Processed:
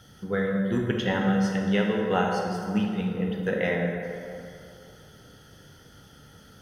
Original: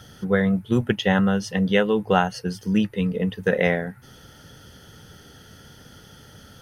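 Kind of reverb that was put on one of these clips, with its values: plate-style reverb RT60 2.7 s, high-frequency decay 0.5×, DRR -0.5 dB; trim -7.5 dB

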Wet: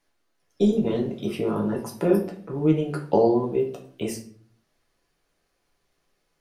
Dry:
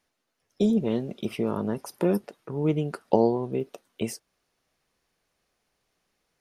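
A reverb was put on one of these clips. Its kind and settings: simulated room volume 47 m³, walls mixed, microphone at 0.68 m; trim -1.5 dB

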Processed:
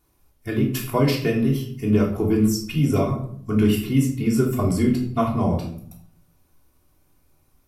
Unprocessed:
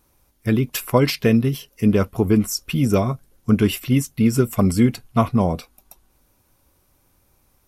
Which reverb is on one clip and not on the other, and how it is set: simulated room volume 780 m³, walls furnished, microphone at 3.3 m; trim -7.5 dB

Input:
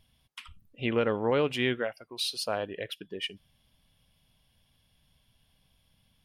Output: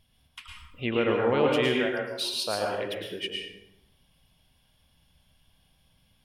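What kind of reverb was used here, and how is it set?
plate-style reverb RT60 0.85 s, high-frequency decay 0.65×, pre-delay 95 ms, DRR -1.5 dB

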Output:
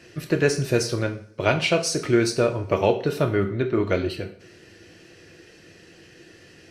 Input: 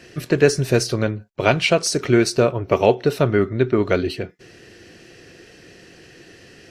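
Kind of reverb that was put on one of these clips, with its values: two-slope reverb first 0.46 s, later 2 s, from -27 dB, DRR 4.5 dB; trim -5 dB

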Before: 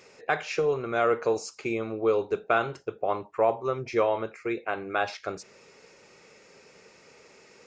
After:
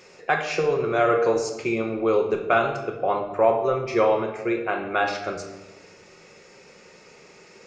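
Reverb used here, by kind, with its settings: simulated room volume 530 m³, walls mixed, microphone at 0.96 m; trim +3 dB

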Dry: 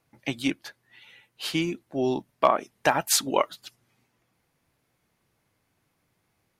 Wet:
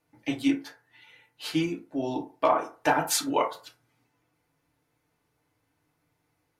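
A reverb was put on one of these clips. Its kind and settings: FDN reverb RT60 0.37 s, low-frequency decay 0.75×, high-frequency decay 0.45×, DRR -2.5 dB; trim -6 dB

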